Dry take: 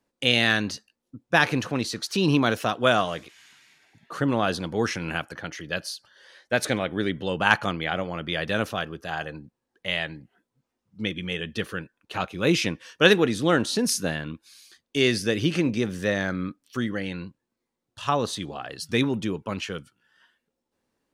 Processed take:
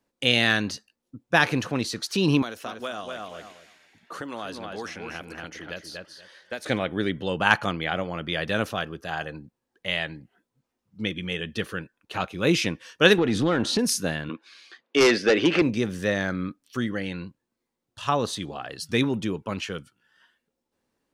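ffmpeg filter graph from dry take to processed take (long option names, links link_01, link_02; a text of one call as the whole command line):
ffmpeg -i in.wav -filter_complex "[0:a]asettb=1/sr,asplit=3[link_01][link_02][link_03];[link_01]atrim=end=2.424[link_04];[link_02]atrim=start=2.42:end=6.66,asetpts=PTS-STARTPTS,afade=type=in:duration=0.004:curve=qsin,afade=type=out:start_time=4.236:duration=0.004:curve=qsin,equalizer=frequency=130:width_type=o:width=0.51:gain=-14.5,asplit=2[link_05][link_06];[link_06]adelay=238,lowpass=frequency=3300:poles=1,volume=-6dB,asplit=2[link_07][link_08];[link_08]adelay=238,lowpass=frequency=3300:poles=1,volume=0.15,asplit=2[link_09][link_10];[link_10]adelay=238,lowpass=frequency=3300:poles=1,volume=0.15[link_11];[link_05][link_07][link_09][link_11]amix=inputs=4:normalize=0,atrim=end_sample=186984,acrossover=split=680|4300[link_12][link_13][link_14];[link_12]acompressor=threshold=-38dB:ratio=4[link_15];[link_13]acompressor=threshold=-37dB:ratio=4[link_16];[link_14]acompressor=threshold=-48dB:ratio=4[link_17];[link_15][link_16][link_17]amix=inputs=3:normalize=0[link_18];[link_03]atrim=start=6.656[link_19];[link_04][link_18]acrossfade=duration=0.004:curve1=hsin:curve2=qsin[link_20];[link_20][link_19]acrossfade=duration=0.004:curve1=qsin:curve2=hsin,asettb=1/sr,asplit=3[link_21][link_22][link_23];[link_21]atrim=end=13.184[link_24];[link_22]atrim=start=13.18:end=13.79,asetpts=PTS-STARTPTS,afade=type=in:duration=0.004:curve=qsin,afade=type=out:start_time=0.606:duration=0.004:curve=qsin,aemphasis=mode=reproduction:type=50fm,acompressor=threshold=-24dB:ratio=4:attack=3.2:release=140:knee=1:detection=peak,aeval=exprs='0.178*sin(PI/2*1.41*val(0)/0.178)':channel_layout=same[link_25];[link_23]atrim=start=13.786[link_26];[link_24][link_25]acrossfade=duration=0.004:curve1=hsin:curve2=qsin[link_27];[link_27][link_26]acrossfade=duration=0.004:curve1=qsin:curve2=hsin,asettb=1/sr,asplit=3[link_28][link_29][link_30];[link_28]atrim=end=14.294[link_31];[link_29]atrim=start=14.29:end=15.62,asetpts=PTS-STARTPTS,afade=type=in:duration=0.004:curve=qsin,afade=type=out:start_time=1.326:duration=0.004:curve=qsin,highpass=380,lowpass=2500,aeval=exprs='0.237*sin(PI/2*2.24*val(0)/0.237)':channel_layout=same[link_32];[link_30]atrim=start=15.616[link_33];[link_31][link_32]acrossfade=duration=0.004:curve1=hsin:curve2=qsin[link_34];[link_34][link_33]acrossfade=duration=0.004:curve1=qsin:curve2=hsin" out.wav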